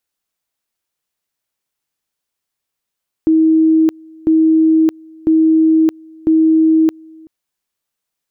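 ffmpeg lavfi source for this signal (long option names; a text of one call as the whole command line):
ffmpeg -f lavfi -i "aevalsrc='pow(10,(-7.5-28*gte(mod(t,1),0.62))/20)*sin(2*PI*319*t)':duration=4:sample_rate=44100" out.wav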